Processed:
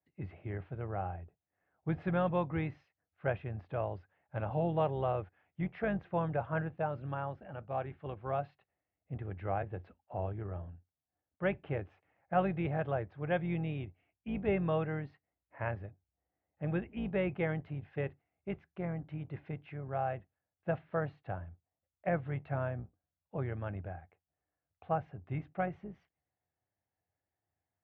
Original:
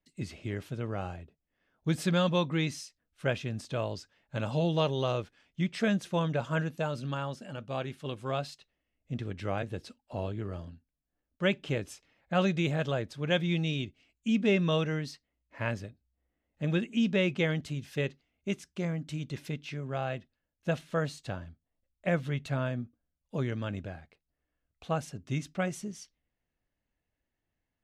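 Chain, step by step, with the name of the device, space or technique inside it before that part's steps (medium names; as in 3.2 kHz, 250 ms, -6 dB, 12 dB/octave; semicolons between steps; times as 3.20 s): sub-octave bass pedal (octave divider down 2 oct, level -5 dB; cabinet simulation 78–2100 Hz, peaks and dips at 89 Hz +6 dB, 240 Hz -9 dB, 760 Hz +9 dB); trim -4.5 dB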